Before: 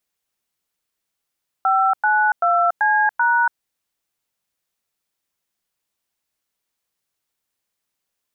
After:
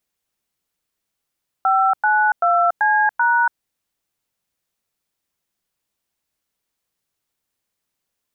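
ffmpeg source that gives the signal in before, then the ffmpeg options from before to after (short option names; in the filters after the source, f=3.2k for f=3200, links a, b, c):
-f lavfi -i "aevalsrc='0.15*clip(min(mod(t,0.386),0.284-mod(t,0.386))/0.002,0,1)*(eq(floor(t/0.386),0)*(sin(2*PI*770*mod(t,0.386))+sin(2*PI*1336*mod(t,0.386)))+eq(floor(t/0.386),1)*(sin(2*PI*852*mod(t,0.386))+sin(2*PI*1477*mod(t,0.386)))+eq(floor(t/0.386),2)*(sin(2*PI*697*mod(t,0.386))+sin(2*PI*1336*mod(t,0.386)))+eq(floor(t/0.386),3)*(sin(2*PI*852*mod(t,0.386))+sin(2*PI*1633*mod(t,0.386)))+eq(floor(t/0.386),4)*(sin(2*PI*941*mod(t,0.386))+sin(2*PI*1477*mod(t,0.386))))':d=1.93:s=44100"
-af "lowshelf=f=420:g=4.5"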